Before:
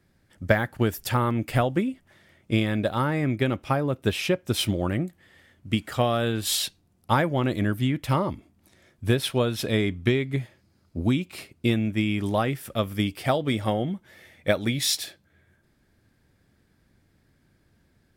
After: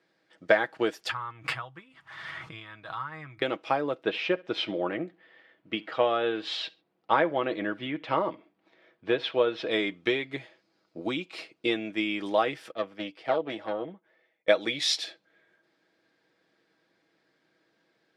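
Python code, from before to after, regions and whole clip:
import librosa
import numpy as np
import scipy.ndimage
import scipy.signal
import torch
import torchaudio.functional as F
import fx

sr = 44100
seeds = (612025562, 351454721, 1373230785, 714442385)

y = fx.chain(x, sr, fx.curve_eq(hz=(130.0, 210.0, 350.0, 560.0, 1100.0, 2200.0, 6200.0, 12000.0), db=(0, -21, -25, -27, -5, -14, -17, -12)),
    fx.pre_swell(db_per_s=39.0), at=(1.09, 3.42))
y = fx.chain(y, sr, fx.lowpass(hz=2900.0, slope=12),
    fx.echo_feedback(ms=68, feedback_pct=28, wet_db=-23.5), at=(4.03, 9.71))
y = fx.chain(y, sr, fx.lowpass(hz=1800.0, slope=6),
    fx.tube_stage(drive_db=18.0, bias=0.6),
    fx.band_widen(depth_pct=70), at=(12.71, 14.48))
y = scipy.signal.sosfilt(scipy.signal.cheby1(2, 1.0, [420.0, 4400.0], 'bandpass', fs=sr, output='sos'), y)
y = y + 0.47 * np.pad(y, (int(6.2 * sr / 1000.0), 0))[:len(y)]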